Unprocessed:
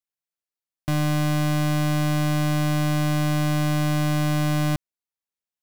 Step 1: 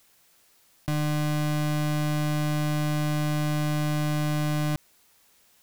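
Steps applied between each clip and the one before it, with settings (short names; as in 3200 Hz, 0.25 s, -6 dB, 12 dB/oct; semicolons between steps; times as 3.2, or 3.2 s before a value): fast leveller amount 50%; gain -4 dB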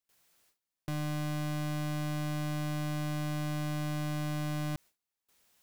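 gate with hold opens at -50 dBFS; gain -8 dB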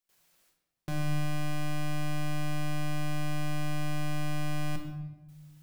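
shoebox room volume 530 m³, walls mixed, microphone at 1 m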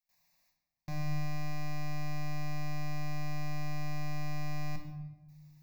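fixed phaser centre 2100 Hz, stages 8; gain -2.5 dB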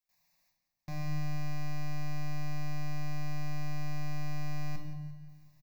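feedback echo 0.174 s, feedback 55%, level -13.5 dB; gain -1 dB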